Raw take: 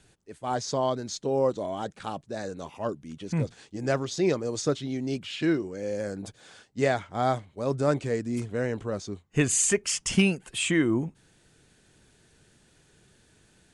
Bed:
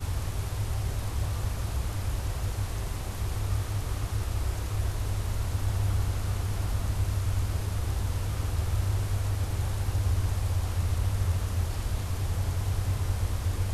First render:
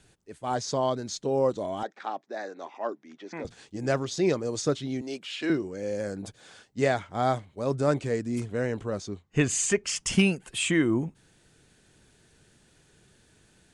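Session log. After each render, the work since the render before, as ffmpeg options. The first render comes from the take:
-filter_complex "[0:a]asettb=1/sr,asplit=3[a][b][c];[a]atrim=end=1.834[d];[b]atrim=start=1.83:end=3.45,asetpts=PTS-STARTPTS,afade=t=in:d=0.004:c=qsin,afade=t=out:st=1.616:d=0.004:c=qsin,highpass=f=300:w=0.5412,highpass=f=300:w=1.3066,equalizer=f=480:t=q:w=4:g=-5,equalizer=f=760:t=q:w=4:g=4,equalizer=f=1.9k:t=q:w=4:g=5,equalizer=f=2.9k:t=q:w=4:g=-8,equalizer=f=4.4k:t=q:w=4:g=-5,lowpass=f=5.3k:w=0.5412,lowpass=f=5.3k:w=1.3066[e];[c]atrim=start=3.446[f];[d][e]acrossfade=d=0.004:c1=hsin:c2=qsin[g];[g][f]acrossfade=d=0.004:c1=qsin:c2=hsin,asettb=1/sr,asplit=3[h][i][j];[h]atrim=end=5.014[k];[i]atrim=start=5.01:end=5.5,asetpts=PTS-STARTPTS,afade=t=in:d=0.004:c=qsin,afade=t=out:st=0.486:d=0.004:c=qsin,highpass=380[l];[j]atrim=start=5.496[m];[k][l]acrossfade=d=0.004:c1=hsin:c2=qsin[n];[n][m]acrossfade=d=0.004:c1=qsin:c2=hsin,asettb=1/sr,asplit=3[o][p][q];[o]atrim=end=9.084[r];[p]atrim=start=9.08:end=9.96,asetpts=PTS-STARTPTS,afade=t=in:d=0.004:c=qsin,afade=t=out:st=0.876:d=0.004:c=qsin,lowpass=6.9k[s];[q]atrim=start=9.956[t];[r][s]acrossfade=d=0.004:c1=hsin:c2=qsin[u];[u][t]acrossfade=d=0.004:c1=qsin:c2=hsin"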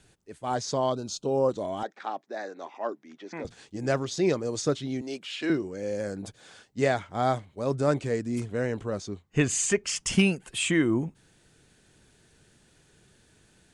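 -filter_complex "[0:a]asettb=1/sr,asplit=3[a][b][c];[a]atrim=end=0.924[d];[b]atrim=start=0.92:end=1.49,asetpts=PTS-STARTPTS,afade=t=in:d=0.004:c=qsin,afade=t=out:st=0.566:d=0.004:c=qsin,asuperstop=centerf=1900:order=12:qfactor=2.1[e];[c]atrim=start=1.486[f];[d][e]acrossfade=d=0.004:c1=hsin:c2=qsin[g];[g][f]acrossfade=d=0.004:c1=qsin:c2=hsin"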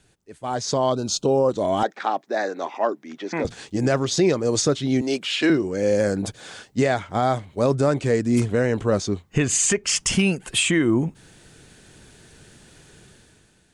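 -af "alimiter=limit=-21.5dB:level=0:latency=1:release=286,dynaudnorm=f=110:g=11:m=11.5dB"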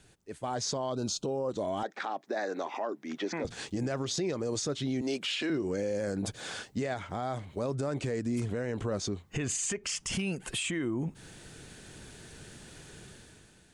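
-af "acompressor=threshold=-28dB:ratio=2,alimiter=limit=-24dB:level=0:latency=1:release=92"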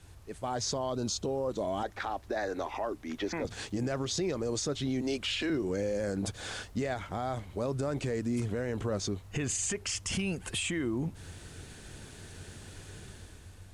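-filter_complex "[1:a]volume=-22.5dB[a];[0:a][a]amix=inputs=2:normalize=0"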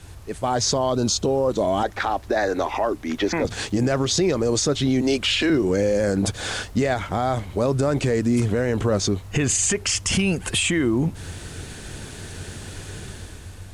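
-af "volume=11.5dB"

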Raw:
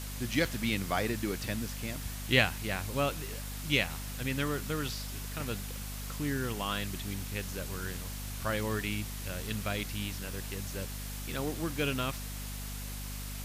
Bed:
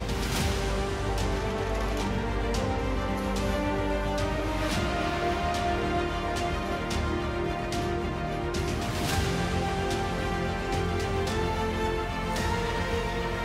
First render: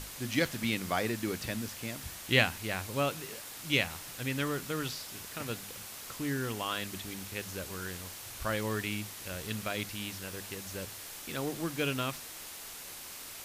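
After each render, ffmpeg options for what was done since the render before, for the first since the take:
-af "bandreject=f=50:t=h:w=6,bandreject=f=100:t=h:w=6,bandreject=f=150:t=h:w=6,bandreject=f=200:t=h:w=6,bandreject=f=250:t=h:w=6"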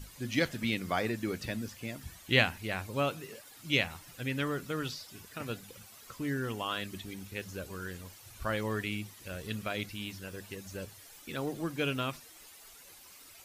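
-af "afftdn=nr=12:nf=-45"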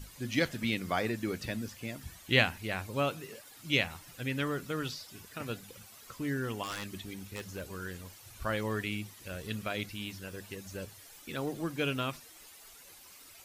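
-filter_complex "[0:a]asettb=1/sr,asplit=3[a][b][c];[a]atrim=end=6.634[d];[b]atrim=start=6.63:end=7.72,asetpts=PTS-STARTPTS,afade=t=in:d=0.004:c=qsin,afade=t=out:st=1.086:d=0.004:c=qsin,aeval=exprs='0.0251*(abs(mod(val(0)/0.0251+3,4)-2)-1)':c=same[e];[c]atrim=start=7.716[f];[d][e]acrossfade=d=0.004:c1=hsin:c2=qsin[g];[g][f]acrossfade=d=0.004:c1=qsin:c2=hsin"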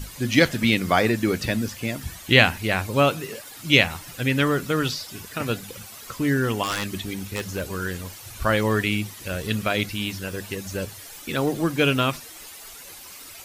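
-af "volume=12dB,alimiter=limit=-1dB:level=0:latency=1"

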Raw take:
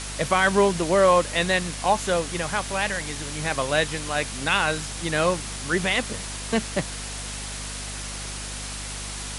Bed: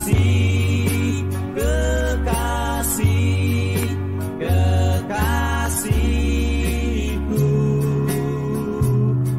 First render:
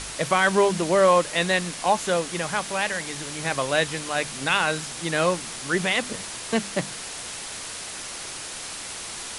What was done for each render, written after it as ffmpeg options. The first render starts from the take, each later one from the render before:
-af "bandreject=f=50:t=h:w=4,bandreject=f=100:t=h:w=4,bandreject=f=150:t=h:w=4,bandreject=f=200:t=h:w=4,bandreject=f=250:t=h:w=4"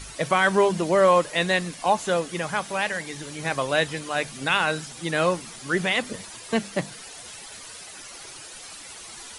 -af "afftdn=nr=11:nf=-36"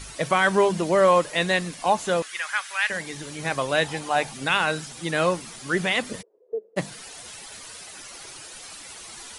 -filter_complex "[0:a]asettb=1/sr,asplit=3[a][b][c];[a]atrim=end=2.224[d];[b]atrim=start=2.22:end=2.9,asetpts=PTS-STARTPTS,afade=t=in:d=0.004:c=qsin,afade=t=out:st=0.676:d=0.004:c=qsin,highpass=f=1.6k:t=q:w=1.7[e];[c]atrim=start=2.896[f];[d][e]acrossfade=d=0.004:c1=hsin:c2=qsin[g];[g][f]acrossfade=d=0.004:c1=qsin:c2=hsin,asettb=1/sr,asplit=3[h][i][j];[h]atrim=end=3.844[k];[i]atrim=start=3.84:end=4.34,asetpts=PTS-STARTPTS,afade=t=in:d=0.004:c=qsin,afade=t=out:st=0.496:d=0.004:c=qsin,equalizer=f=820:t=o:w=0.39:g=13.5[l];[j]atrim=start=4.336[m];[k][l]acrossfade=d=0.004:c1=hsin:c2=qsin[n];[n][m]acrossfade=d=0.004:c1=qsin:c2=hsin,asplit=3[o][p][q];[o]afade=t=out:st=6.21:d=0.02[r];[p]asuperpass=centerf=450:order=4:qfactor=4.4,afade=t=in:st=6.21:d=0.02,afade=t=out:st=6.76:d=0.02[s];[q]afade=t=in:st=6.76:d=0.02[t];[r][s][t]amix=inputs=3:normalize=0"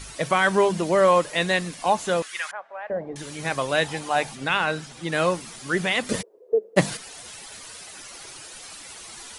-filter_complex "[0:a]asettb=1/sr,asplit=3[a][b][c];[a]atrim=end=2.514[d];[b]atrim=start=2.51:end=3.16,asetpts=PTS-STARTPTS,afade=t=in:d=0.004:c=qsin,afade=t=out:st=0.646:d=0.004:c=qsin,lowpass=f=630:t=q:w=3[e];[c]atrim=start=3.156[f];[d][e]acrossfade=d=0.004:c1=hsin:c2=qsin[g];[g][f]acrossfade=d=0.004:c1=qsin:c2=hsin,asettb=1/sr,asplit=3[h][i][j];[h]atrim=end=4.354[k];[i]atrim=start=4.35:end=5.12,asetpts=PTS-STARTPTS,afade=t=in:d=0.004:c=qsin,afade=t=out:st=0.766:d=0.004:c=qsin,lowpass=f=3.9k:p=1[l];[j]atrim=start=5.116[m];[k][l]acrossfade=d=0.004:c1=hsin:c2=qsin[n];[n][m]acrossfade=d=0.004:c1=qsin:c2=hsin,asplit=3[o][p][q];[o]atrim=end=6.092[r];[p]atrim=start=6.088:end=6.972,asetpts=PTS-STARTPTS,volume=8.5dB[s];[q]atrim=start=6.968[t];[r][s]acrossfade=d=0.004:c1=hsin:c2=hsin[u];[u][t]acrossfade=d=0.004:c1=hsin:c2=hsin"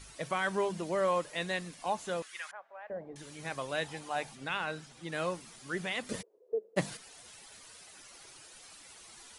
-af "volume=-12dB"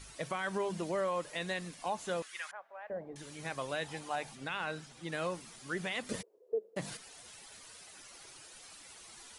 -af "alimiter=level_in=1dB:limit=-24dB:level=0:latency=1:release=97,volume=-1dB"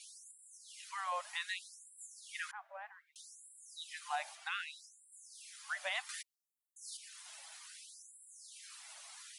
-af "afftfilt=real='re*gte(b*sr/1024,550*pow(7400/550,0.5+0.5*sin(2*PI*0.64*pts/sr)))':imag='im*gte(b*sr/1024,550*pow(7400/550,0.5+0.5*sin(2*PI*0.64*pts/sr)))':win_size=1024:overlap=0.75"

